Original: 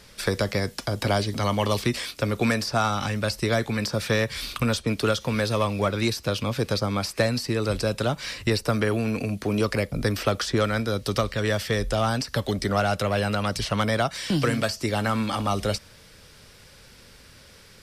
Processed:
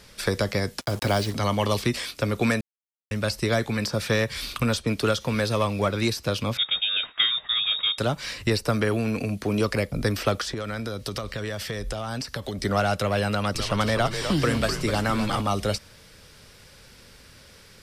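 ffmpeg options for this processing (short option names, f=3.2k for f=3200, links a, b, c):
-filter_complex "[0:a]asettb=1/sr,asplit=3[a][b][c];[a]atrim=end=0.814[d];[b]atrim=start=0.81:end=1.33,asetpts=PTS-STARTPTS,afade=t=in:d=0.004:c=qsin,afade=t=out:st=0.516:d=0.004:c=qsin,acrusher=bits=5:mix=0:aa=0.5[e];[c]atrim=start=1.326[f];[d][e]acrossfade=d=0.004:c1=hsin:c2=qsin[g];[g][f]acrossfade=d=0.004:c1=qsin:c2=hsin,asettb=1/sr,asplit=3[h][i][j];[h]atrim=end=6.574[k];[i]atrim=start=6.57:end=7.98,asetpts=PTS-STARTPTS,afade=t=in:d=0.004:c=qsin,afade=t=out:st=1.406:d=0.004:c=qsin,lowpass=f=3.2k:t=q:w=0.5098,lowpass=f=3.2k:t=q:w=0.6013,lowpass=f=3.2k:t=q:w=0.9,lowpass=f=3.2k:t=q:w=2.563,afreqshift=-3800[l];[j]atrim=start=7.976[m];[k][l]acrossfade=d=0.004:c1=hsin:c2=qsin[n];[n][m]acrossfade=d=0.004:c1=qsin:c2=hsin,asettb=1/sr,asplit=3[o][p][q];[o]atrim=end=10.414[r];[p]atrim=start=10.41:end=12.63,asetpts=PTS-STARTPTS,afade=t=in:d=0.004:c=qsin,afade=t=out:st=2.216:d=0.004:c=qsin,acompressor=threshold=-26dB:ratio=12:attack=3.2:release=140:knee=1:detection=peak[s];[q]atrim=start=12.626[t];[r][s]acrossfade=d=0.004:c1=hsin:c2=qsin[u];[u][t]acrossfade=d=0.004:c1=qsin:c2=hsin,asettb=1/sr,asplit=3[v][w][x];[v]atrim=end=13.294[y];[w]atrim=start=13.29:end=15.41,asetpts=PTS-STARTPTS,afade=t=in:d=0.004:c=qsin,afade=t=out:st=2.116:d=0.004:c=qsin,asplit=7[z][aa][ab][ac][ad][ae][af];[aa]adelay=250,afreqshift=-93,volume=-7.5dB[ag];[ab]adelay=500,afreqshift=-186,volume=-13.7dB[ah];[ac]adelay=750,afreqshift=-279,volume=-19.9dB[ai];[ad]adelay=1000,afreqshift=-372,volume=-26.1dB[aj];[ae]adelay=1250,afreqshift=-465,volume=-32.3dB[ak];[af]adelay=1500,afreqshift=-558,volume=-38.5dB[al];[z][ag][ah][ai][aj][ak][al]amix=inputs=7:normalize=0,atrim=end_sample=93492[am];[x]atrim=start=15.406[an];[y][am]acrossfade=d=0.004:c1=hsin:c2=qsin[ao];[ao][an]acrossfade=d=0.004:c1=qsin:c2=hsin,asplit=3[ap][aq][ar];[ap]atrim=end=2.61,asetpts=PTS-STARTPTS,afade=t=out:st=2.606:d=0.004:c=hsin[as];[aq]atrim=start=2.61:end=3.11,asetpts=PTS-STARTPTS,volume=0[at];[ar]atrim=start=3.11,asetpts=PTS-STARTPTS,afade=t=in:d=0.004:c=hsin[au];[as][at][au]concat=n=3:v=0:a=1"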